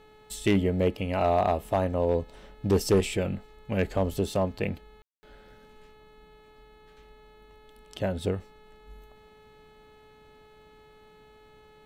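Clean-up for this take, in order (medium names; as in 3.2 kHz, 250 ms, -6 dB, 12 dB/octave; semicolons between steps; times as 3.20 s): clip repair -15.5 dBFS; de-hum 428.5 Hz, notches 10; room tone fill 5.02–5.23 s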